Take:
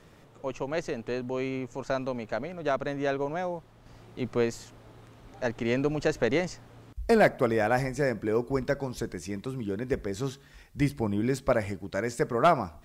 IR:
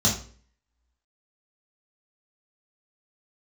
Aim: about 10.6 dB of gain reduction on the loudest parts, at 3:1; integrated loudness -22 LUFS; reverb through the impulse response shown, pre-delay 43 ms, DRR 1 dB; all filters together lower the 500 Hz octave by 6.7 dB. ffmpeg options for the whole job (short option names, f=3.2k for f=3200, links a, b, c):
-filter_complex "[0:a]equalizer=f=500:t=o:g=-8.5,acompressor=threshold=-34dB:ratio=3,asplit=2[a][b];[1:a]atrim=start_sample=2205,adelay=43[c];[b][c]afir=irnorm=-1:irlink=0,volume=-14dB[d];[a][d]amix=inputs=2:normalize=0,volume=9dB"